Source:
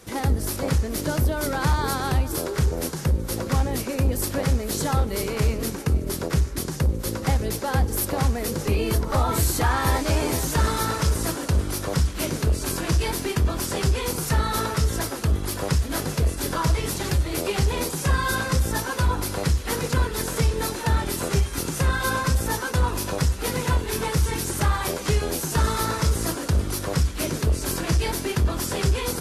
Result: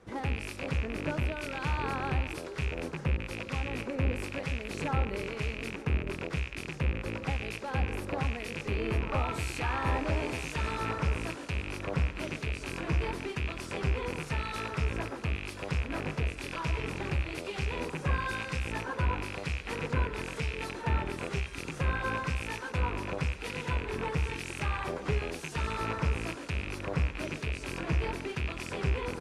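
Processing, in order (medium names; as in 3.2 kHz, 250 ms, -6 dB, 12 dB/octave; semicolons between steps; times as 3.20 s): rattle on loud lows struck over -29 dBFS, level -15 dBFS; low-pass 10 kHz 24 dB/octave; speakerphone echo 140 ms, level -13 dB; harmonic tremolo 1 Hz, depth 50%, crossover 2 kHz; tone controls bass -1 dB, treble -11 dB; trim -6.5 dB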